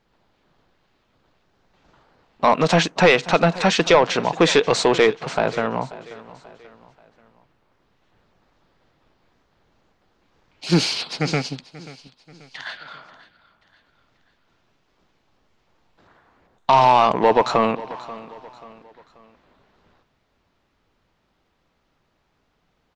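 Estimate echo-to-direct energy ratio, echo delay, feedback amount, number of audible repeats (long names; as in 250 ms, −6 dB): −17.5 dB, 535 ms, 42%, 3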